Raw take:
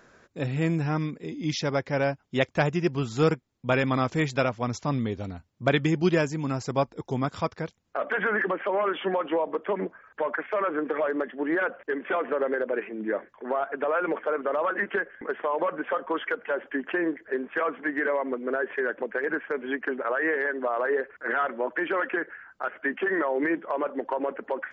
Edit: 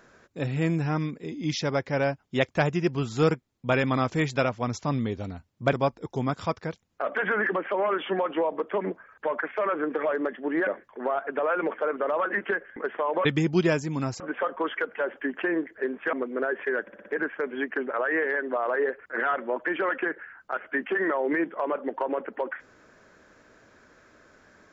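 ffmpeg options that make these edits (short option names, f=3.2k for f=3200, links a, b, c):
-filter_complex "[0:a]asplit=11[a][b][c][d][e][f][g][h][i][j][k];[a]atrim=end=5.732[l];[b]atrim=start=6.678:end=11.622[m];[c]atrim=start=13.118:end=15.702[n];[d]atrim=start=5.728:end=6.682[o];[e]atrim=start=15.698:end=17.632[p];[f]atrim=start=18.238:end=18.992[q];[g]atrim=start=18.928:end=18.992[r];[h]atrim=start=18.928:end=18.992[s];[i]atrim=start=18.928:end=18.992[t];[j]atrim=start=18.928:end=18.992[u];[k]atrim=start=19.228[v];[l][m]acrossfade=d=0.004:c1=hsin:c2=hsin[w];[w][n]acrossfade=d=0.004:c1=hsin:c2=hsin[x];[x][o]acrossfade=d=0.004:c1=hsin:c2=hsin[y];[y][p]acrossfade=d=0.004:c1=hsin:c2=hsin[z];[z][q]acrossfade=d=0.004:c1=hsin:c2=hsin[aa];[aa][r]acrossfade=d=0.004:c1=hsin:c2=hsin[ab];[ab][s]acrossfade=d=0.004:c1=hsin:c2=hsin[ac];[ac][t]acrossfade=d=0.004:c1=hsin:c2=hsin[ad];[ad][u]acrossfade=d=0.004:c1=hsin:c2=hsin[ae];[ae][v]acrossfade=d=0.004:c1=hsin:c2=hsin"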